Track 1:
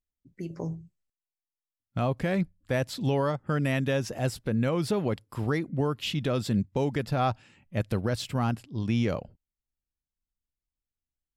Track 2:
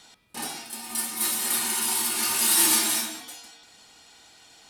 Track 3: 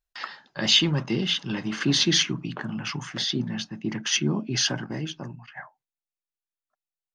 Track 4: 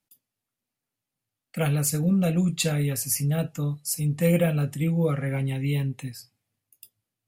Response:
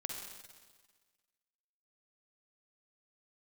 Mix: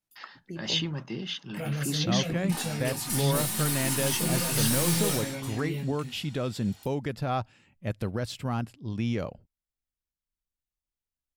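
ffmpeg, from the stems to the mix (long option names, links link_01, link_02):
-filter_complex "[0:a]adelay=100,volume=-3dB[link_01];[1:a]aeval=exprs='(tanh(20*val(0)+0.55)-tanh(0.55))/20':channel_layout=same,adelay=2150,volume=-0.5dB[link_02];[2:a]agate=range=-9dB:threshold=-44dB:ratio=16:detection=peak,volume=-9.5dB[link_03];[3:a]alimiter=limit=-18.5dB:level=0:latency=1,flanger=delay=18:depth=5.2:speed=0.37,volume=-3dB[link_04];[link_01][link_02][link_03][link_04]amix=inputs=4:normalize=0"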